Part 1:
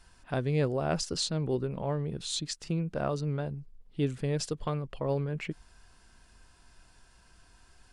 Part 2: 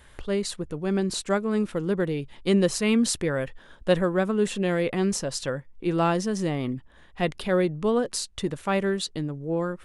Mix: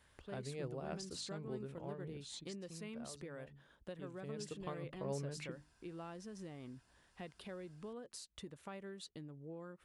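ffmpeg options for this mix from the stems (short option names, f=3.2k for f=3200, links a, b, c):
-filter_complex "[0:a]bandreject=f=50:t=h:w=6,bandreject=f=100:t=h:w=6,bandreject=f=150:t=h:w=6,bandreject=f=200:t=h:w=6,bandreject=f=250:t=h:w=6,bandreject=f=300:t=h:w=6,volume=-3.5dB,afade=t=out:st=2.28:d=0.39:silence=0.421697,afade=t=in:st=4.1:d=0.58:silence=0.266073[a];[1:a]acompressor=threshold=-31dB:ratio=5,volume=-15.5dB[b];[a][b]amix=inputs=2:normalize=0,highpass=48"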